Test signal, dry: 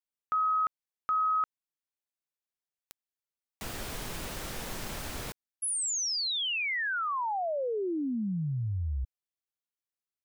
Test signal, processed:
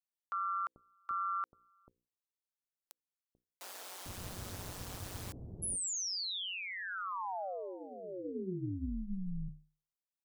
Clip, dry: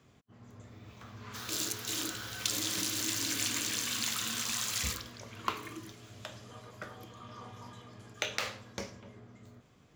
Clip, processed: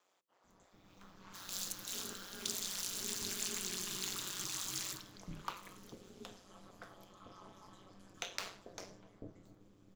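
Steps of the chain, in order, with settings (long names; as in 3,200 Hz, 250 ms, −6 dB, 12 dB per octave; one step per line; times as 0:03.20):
parametric band 2,100 Hz −5.5 dB 1.4 octaves
mains-hum notches 60/120/180/240/300/360/420 Hz
multiband delay without the direct sound highs, lows 440 ms, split 480 Hz
ring modulation 93 Hz
level −2.5 dB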